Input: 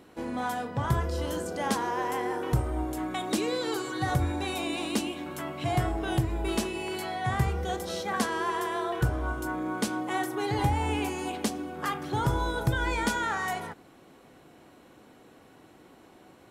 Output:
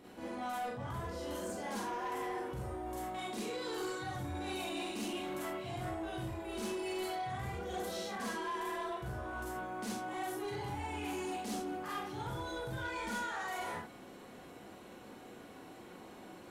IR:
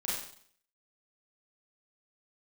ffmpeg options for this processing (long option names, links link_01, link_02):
-filter_complex "[0:a]areverse,acompressor=threshold=-37dB:ratio=6,areverse[link_01];[1:a]atrim=start_sample=2205,afade=type=out:start_time=0.19:duration=0.01,atrim=end_sample=8820[link_02];[link_01][link_02]afir=irnorm=-1:irlink=0,asoftclip=type=tanh:threshold=-31.5dB,volume=-1.5dB"